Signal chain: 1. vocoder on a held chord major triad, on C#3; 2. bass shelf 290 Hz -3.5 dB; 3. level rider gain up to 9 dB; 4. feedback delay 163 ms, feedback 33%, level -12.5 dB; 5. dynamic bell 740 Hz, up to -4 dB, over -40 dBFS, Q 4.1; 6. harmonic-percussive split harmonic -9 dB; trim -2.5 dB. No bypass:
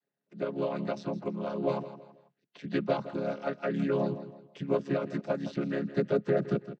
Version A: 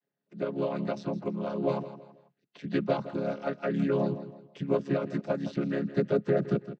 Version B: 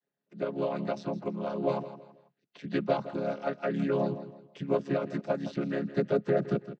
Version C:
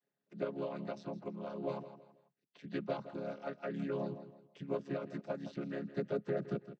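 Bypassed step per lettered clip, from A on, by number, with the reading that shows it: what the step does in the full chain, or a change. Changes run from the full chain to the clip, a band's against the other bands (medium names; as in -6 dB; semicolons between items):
2, 125 Hz band +2.0 dB; 5, 1 kHz band +2.0 dB; 3, momentary loudness spread change +2 LU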